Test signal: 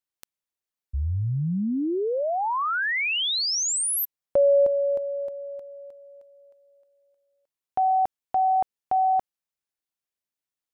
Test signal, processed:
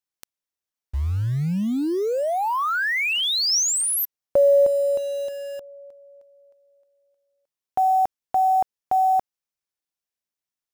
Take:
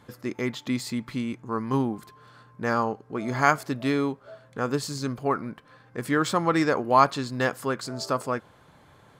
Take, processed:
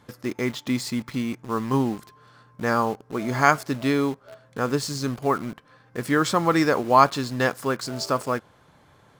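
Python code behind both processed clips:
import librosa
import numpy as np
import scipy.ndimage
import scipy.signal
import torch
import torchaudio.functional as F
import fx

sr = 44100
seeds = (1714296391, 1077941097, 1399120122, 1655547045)

p1 = fx.peak_eq(x, sr, hz=5600.0, db=3.5, octaves=0.32)
p2 = fx.quant_dither(p1, sr, seeds[0], bits=6, dither='none')
p3 = p1 + (p2 * 10.0 ** (-6.0 / 20.0))
y = p3 * 10.0 ** (-1.0 / 20.0)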